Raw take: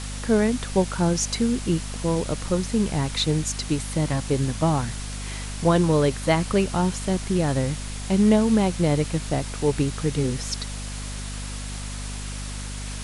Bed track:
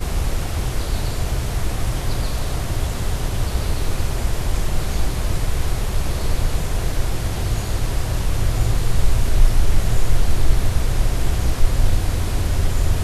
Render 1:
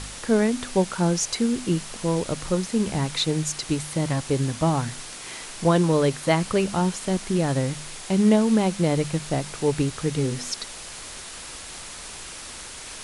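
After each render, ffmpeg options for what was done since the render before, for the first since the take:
ffmpeg -i in.wav -af "bandreject=frequency=50:width_type=h:width=4,bandreject=frequency=100:width_type=h:width=4,bandreject=frequency=150:width_type=h:width=4,bandreject=frequency=200:width_type=h:width=4,bandreject=frequency=250:width_type=h:width=4" out.wav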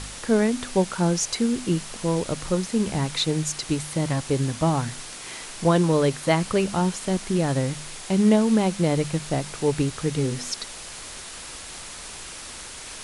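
ffmpeg -i in.wav -af anull out.wav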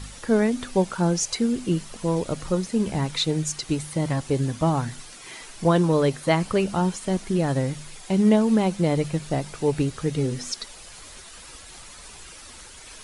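ffmpeg -i in.wav -af "afftdn=noise_reduction=9:noise_floor=-39" out.wav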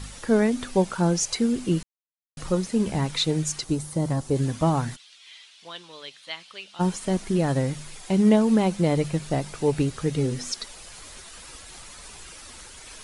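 ffmpeg -i in.wav -filter_complex "[0:a]asettb=1/sr,asplit=3[link_01][link_02][link_03];[link_01]atrim=end=3.644[link_04];[link_02]atrim=start=3.64:end=4.36,asetpts=PTS-STARTPTS,afade=type=in:duration=0.004:curve=qsin,afade=type=out:start_time=0.716:duration=0.004:curve=qsin,equalizer=frequency=2400:width=0.83:gain=-9.5[link_05];[link_03]atrim=start=4.356[link_06];[link_04][link_05]acrossfade=duration=0.004:curve1=hsin:curve2=qsin[link_07];[link_07][link_06]acrossfade=duration=0.004:curve1=qsin:curve2=hsin,asplit=3[link_08][link_09][link_10];[link_08]afade=type=out:start_time=4.95:duration=0.02[link_11];[link_09]bandpass=frequency=3400:width_type=q:width=2.6,afade=type=in:start_time=4.95:duration=0.02,afade=type=out:start_time=6.79:duration=0.02[link_12];[link_10]afade=type=in:start_time=6.79:duration=0.02[link_13];[link_11][link_12][link_13]amix=inputs=3:normalize=0,asplit=3[link_14][link_15][link_16];[link_14]atrim=end=1.83,asetpts=PTS-STARTPTS,afade=type=out:start_time=1.826:duration=0.004:curve=hsin[link_17];[link_15]atrim=start=1.83:end=2.37,asetpts=PTS-STARTPTS,volume=0[link_18];[link_16]atrim=start=2.37,asetpts=PTS-STARTPTS,afade=type=in:duration=0.004:curve=hsin[link_19];[link_17][link_18][link_19]concat=n=3:v=0:a=1" out.wav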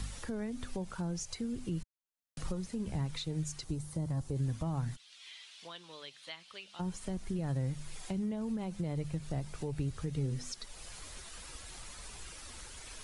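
ffmpeg -i in.wav -filter_complex "[0:a]alimiter=limit=-16dB:level=0:latency=1:release=90,acrossover=split=120[link_01][link_02];[link_02]acompressor=threshold=-51dB:ratio=2[link_03];[link_01][link_03]amix=inputs=2:normalize=0" out.wav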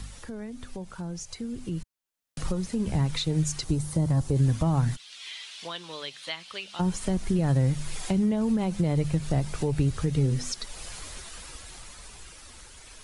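ffmpeg -i in.wav -af "dynaudnorm=framelen=220:gausssize=21:maxgain=11dB" out.wav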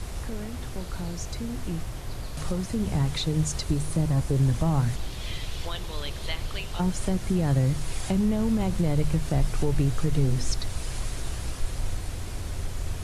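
ffmpeg -i in.wav -i bed.wav -filter_complex "[1:a]volume=-13dB[link_01];[0:a][link_01]amix=inputs=2:normalize=0" out.wav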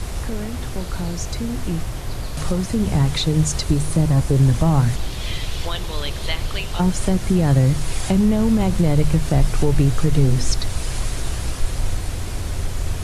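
ffmpeg -i in.wav -af "volume=7.5dB" out.wav

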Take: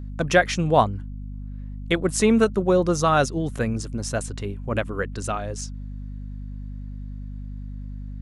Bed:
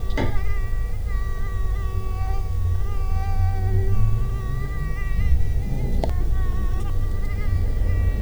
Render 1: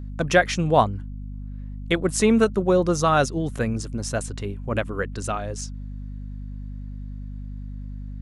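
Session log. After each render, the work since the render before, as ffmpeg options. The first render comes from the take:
ffmpeg -i in.wav -af anull out.wav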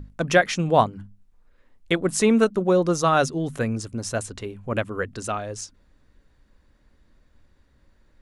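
ffmpeg -i in.wav -af "bandreject=frequency=50:width_type=h:width=6,bandreject=frequency=100:width_type=h:width=6,bandreject=frequency=150:width_type=h:width=6,bandreject=frequency=200:width_type=h:width=6,bandreject=frequency=250:width_type=h:width=6" out.wav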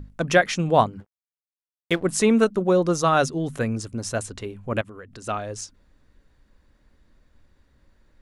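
ffmpeg -i in.wav -filter_complex "[0:a]asettb=1/sr,asplit=3[link_01][link_02][link_03];[link_01]atrim=end=1.004[link_04];[link_02]atrim=start=1:end=2.03,asetpts=PTS-STARTPTS,afade=type=in:duration=0.004:curve=qsin,afade=type=out:start_time=1.026:duration=0.004:curve=qsin,aeval=exprs='sgn(val(0))*max(abs(val(0))-0.0106,0)':channel_layout=same[link_05];[link_03]atrim=start=2.026[link_06];[link_04][link_05]acrossfade=duration=0.004:curve1=hsin:curve2=qsin[link_07];[link_07][link_06]acrossfade=duration=0.004:curve1=qsin:curve2=hsin,asettb=1/sr,asplit=3[link_08][link_09][link_10];[link_08]atrim=end=4.814[link_11];[link_09]atrim=start=4.81:end=5.27,asetpts=PTS-STARTPTS,afade=type=in:duration=0.004:curve=qsin,afade=type=out:start_time=0.456:duration=0.004:curve=qsin,acompressor=threshold=-39dB:ratio=4:attack=3.2:release=140:knee=1:detection=peak[link_12];[link_10]atrim=start=5.266[link_13];[link_11][link_12]acrossfade=duration=0.004:curve1=hsin:curve2=qsin[link_14];[link_14][link_13]acrossfade=duration=0.004:curve1=qsin:curve2=hsin" out.wav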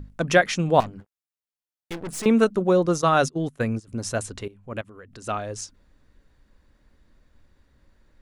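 ffmpeg -i in.wav -filter_complex "[0:a]asettb=1/sr,asplit=3[link_01][link_02][link_03];[link_01]atrim=end=0.804[link_04];[link_02]atrim=start=0.8:end=2.26,asetpts=PTS-STARTPTS,afade=type=in:duration=0.004:curve=qsin,afade=type=out:start_time=1.456:duration=0.004:curve=qsin,aeval=exprs='(tanh(31.6*val(0)+0.45)-tanh(0.45))/31.6':channel_layout=same[link_05];[link_03]atrim=start=2.256[link_06];[link_04][link_05]acrossfade=duration=0.004:curve1=hsin:curve2=qsin[link_07];[link_07][link_06]acrossfade=duration=0.004:curve1=qsin:curve2=hsin,asplit=3[link_08][link_09][link_10];[link_08]afade=type=out:start_time=2.83:duration=0.02[link_11];[link_09]agate=range=-19dB:threshold=-29dB:ratio=16:release=100:detection=peak,afade=type=in:start_time=2.83:duration=0.02,afade=type=out:start_time=3.87:duration=0.02[link_12];[link_10]afade=type=in:start_time=3.87:duration=0.02[link_13];[link_11][link_12][link_13]amix=inputs=3:normalize=0,asplit=2[link_14][link_15];[link_14]atrim=end=4.48,asetpts=PTS-STARTPTS,afade=type=out:start_time=4.476:duration=0.004:curve=hsin:silence=0.188365[link_16];[link_15]atrim=start=4.48,asetpts=PTS-STARTPTS,afade=type=in:duration=0.88:silence=0.188365[link_17];[link_16][link_17]concat=n=2:v=0:a=1" out.wav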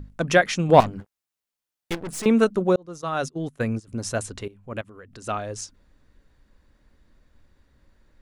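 ffmpeg -i in.wav -filter_complex "[0:a]asettb=1/sr,asplit=3[link_01][link_02][link_03];[link_01]atrim=end=0.694[link_04];[link_02]atrim=start=0.69:end=1.95,asetpts=PTS-STARTPTS,afade=type=in:duration=0.004:curve=qsin,afade=type=out:start_time=1.256:duration=0.004:curve=qsin,acontrast=43[link_05];[link_03]atrim=start=1.946[link_06];[link_04][link_05]acrossfade=duration=0.004:curve1=hsin:curve2=qsin[link_07];[link_07][link_06]acrossfade=duration=0.004:curve1=qsin:curve2=hsin,asplit=2[link_08][link_09];[link_08]atrim=end=2.76,asetpts=PTS-STARTPTS,afade=type=out:start_time=2.756:duration=0.004:curve=hsin[link_10];[link_09]atrim=start=2.76,asetpts=PTS-STARTPTS,afade=type=in:duration=0.93[link_11];[link_10][link_11]concat=n=2:v=0:a=1" out.wav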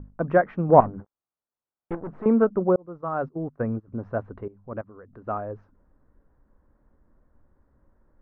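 ffmpeg -i in.wav -af "lowpass=frequency=1300:width=0.5412,lowpass=frequency=1300:width=1.3066,lowshelf=frequency=180:gain=-3.5" out.wav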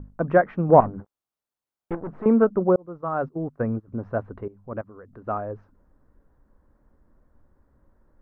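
ffmpeg -i in.wav -af "volume=1.5dB,alimiter=limit=-3dB:level=0:latency=1" out.wav

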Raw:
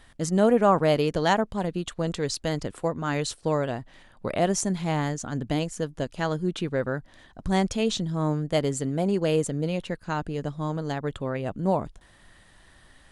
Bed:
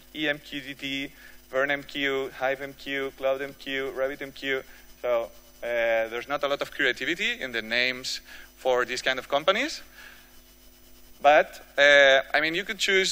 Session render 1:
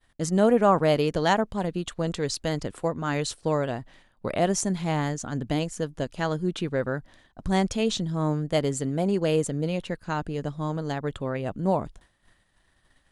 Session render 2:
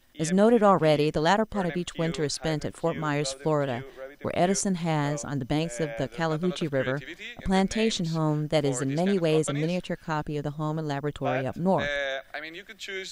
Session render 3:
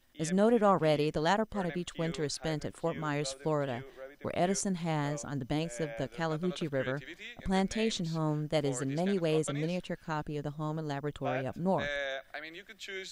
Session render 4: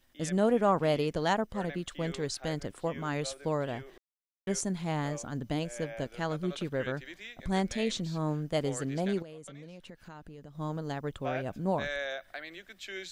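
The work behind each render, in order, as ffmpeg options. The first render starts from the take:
ffmpeg -i in.wav -af "agate=range=-33dB:threshold=-45dB:ratio=3:detection=peak" out.wav
ffmpeg -i in.wav -i bed.wav -filter_complex "[1:a]volume=-13dB[link_01];[0:a][link_01]amix=inputs=2:normalize=0" out.wav
ffmpeg -i in.wav -af "volume=-6dB" out.wav
ffmpeg -i in.wav -filter_complex "[0:a]asettb=1/sr,asplit=3[link_01][link_02][link_03];[link_01]atrim=end=9.224[link_04];[link_02]atrim=start=9.22:end=10.55,asetpts=PTS-STARTPTS,afade=type=in:duration=0.004:curve=qsin,afade=type=out:start_time=1.326:duration=0.004:curve=qsin,acompressor=threshold=-44dB:ratio=6:attack=3.2:release=140:knee=1:detection=peak[link_05];[link_03]atrim=start=10.546[link_06];[link_04][link_05]acrossfade=duration=0.004:curve1=hsin:curve2=qsin[link_07];[link_07][link_06]acrossfade=duration=0.004:curve1=qsin:curve2=hsin,asplit=3[link_08][link_09][link_10];[link_08]atrim=end=3.98,asetpts=PTS-STARTPTS,afade=type=out:start_time=3.976:duration=0.004:curve=hsin[link_11];[link_09]atrim=start=3.98:end=4.47,asetpts=PTS-STARTPTS,volume=0[link_12];[link_10]atrim=start=4.47,asetpts=PTS-STARTPTS,afade=type=in:duration=0.004:curve=hsin[link_13];[link_11][link_12][link_13]concat=n=3:v=0:a=1" out.wav

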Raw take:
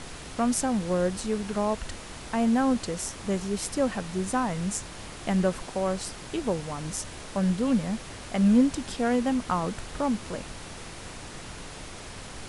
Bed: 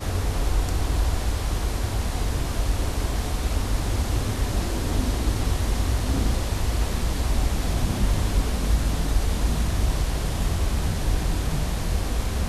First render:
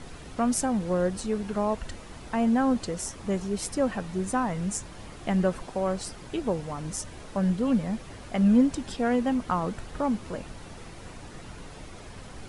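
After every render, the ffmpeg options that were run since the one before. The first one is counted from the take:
ffmpeg -i in.wav -af "afftdn=noise_reduction=8:noise_floor=-42" out.wav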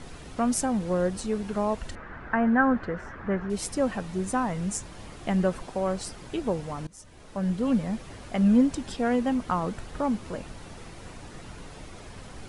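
ffmpeg -i in.wav -filter_complex "[0:a]asettb=1/sr,asplit=3[link_01][link_02][link_03];[link_01]atrim=end=1.954[link_04];[link_02]atrim=start=1.95:end=3.5,asetpts=PTS-STARTPTS,afade=type=in:duration=0.004:curve=qsin,afade=type=out:start_time=1.546:duration=0.004:curve=qsin,lowpass=frequency=1600:width_type=q:width=4.2[link_05];[link_03]atrim=start=3.496[link_06];[link_04][link_05]acrossfade=duration=0.004:curve1=hsin:curve2=qsin[link_07];[link_07][link_06]acrossfade=duration=0.004:curve1=qsin:curve2=hsin,asplit=2[link_08][link_09];[link_08]atrim=end=6.87,asetpts=PTS-STARTPTS,afade=type=out:start_time=6.866:duration=0.004:curve=hsin:silence=0.0707946[link_10];[link_09]atrim=start=6.87,asetpts=PTS-STARTPTS,afade=type=in:duration=0.8:silence=0.0707946[link_11];[link_10][link_11]concat=n=2:v=0:a=1" out.wav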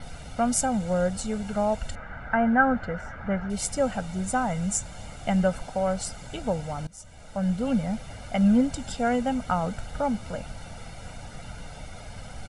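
ffmpeg -i in.wav -af "aecho=1:1:1.4:0.71,adynamicequalizer=threshold=0.00178:dfrequency=7300:dqfactor=5.1:tfrequency=7300:tqfactor=5.1:attack=5:release=100:ratio=0.375:range=3.5:mode=boostabove:tftype=bell" out.wav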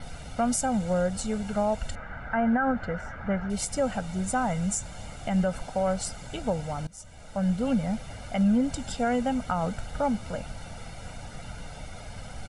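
ffmpeg -i in.wav -af "alimiter=limit=-17dB:level=0:latency=1:release=92" out.wav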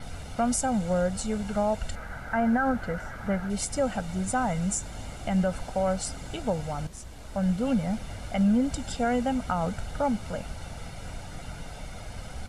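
ffmpeg -i in.wav -i bed.wav -filter_complex "[1:a]volume=-21dB[link_01];[0:a][link_01]amix=inputs=2:normalize=0" out.wav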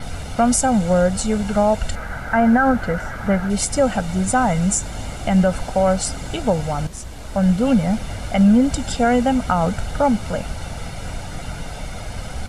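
ffmpeg -i in.wav -af "volume=9.5dB" out.wav

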